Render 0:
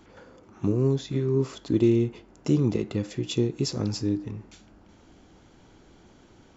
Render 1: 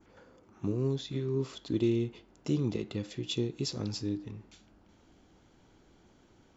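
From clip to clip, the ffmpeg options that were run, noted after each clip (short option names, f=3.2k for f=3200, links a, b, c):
-af "adynamicequalizer=threshold=0.00224:dfrequency=3600:dqfactor=1.4:tfrequency=3600:tqfactor=1.4:attack=5:release=100:ratio=0.375:range=3.5:mode=boostabove:tftype=bell,volume=-7.5dB"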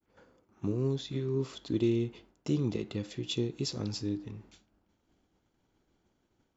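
-af "agate=range=-33dB:threshold=-52dB:ratio=3:detection=peak"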